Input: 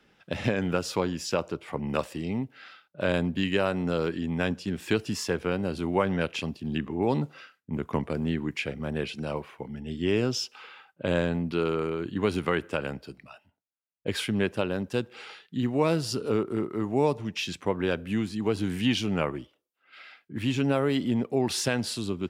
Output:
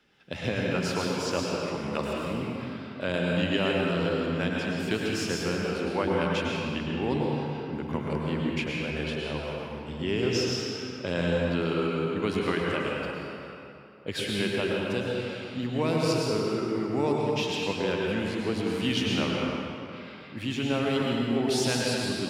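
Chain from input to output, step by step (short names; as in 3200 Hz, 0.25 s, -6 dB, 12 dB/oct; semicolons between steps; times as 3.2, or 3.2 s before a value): bell 3800 Hz +4 dB 2.1 oct; reverb RT60 2.8 s, pre-delay 97 ms, DRR -3 dB; gain -5 dB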